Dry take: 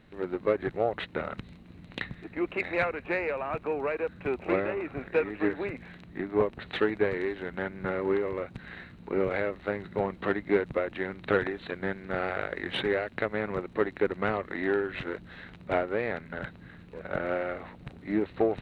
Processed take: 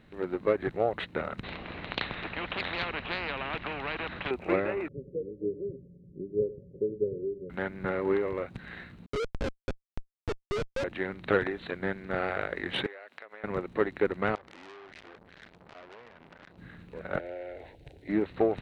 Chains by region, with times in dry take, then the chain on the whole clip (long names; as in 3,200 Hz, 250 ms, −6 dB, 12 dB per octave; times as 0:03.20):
0:01.43–0:04.31: low-pass filter 3,600 Hz 24 dB per octave + every bin compressed towards the loudest bin 4 to 1
0:04.88–0:07.50: Chebyshev low-pass with heavy ripple 570 Hz, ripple 9 dB + single-tap delay 100 ms −16 dB
0:09.06–0:10.84: three sine waves on the formant tracks + comparator with hysteresis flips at −25 dBFS + high-frequency loss of the air 110 metres
0:12.86–0:13.44: high-pass filter 590 Hz + downward compressor 8 to 1, threshold −42 dBFS
0:14.35–0:16.58: downward compressor 12 to 1, threshold −38 dBFS + saturating transformer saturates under 4,000 Hz
0:17.19–0:18.09: downward compressor 2.5 to 1, threshold −36 dBFS + phaser with its sweep stopped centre 490 Hz, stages 4
whole clip: no processing